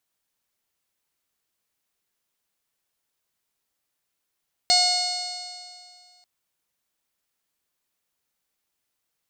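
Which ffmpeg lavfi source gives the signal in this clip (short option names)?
-f lavfi -i "aevalsrc='0.0794*pow(10,-3*t/2.2)*sin(2*PI*718.27*t)+0.00944*pow(10,-3*t/2.2)*sin(2*PI*1438.18*t)+0.0355*pow(10,-3*t/2.2)*sin(2*PI*2161.35*t)+0.02*pow(10,-3*t/2.2)*sin(2*PI*2889.41*t)+0.0282*pow(10,-3*t/2.2)*sin(2*PI*3623.94*t)+0.158*pow(10,-3*t/2.2)*sin(2*PI*4366.54*t)+0.0631*pow(10,-3*t/2.2)*sin(2*PI*5118.73*t)+0.0316*pow(10,-3*t/2.2)*sin(2*PI*5882.04*t)+0.0282*pow(10,-3*t/2.2)*sin(2*PI*6657.93*t)+0.0335*pow(10,-3*t/2.2)*sin(2*PI*7447.84*t)+0.0282*pow(10,-3*t/2.2)*sin(2*PI*8253.16*t)':d=1.54:s=44100"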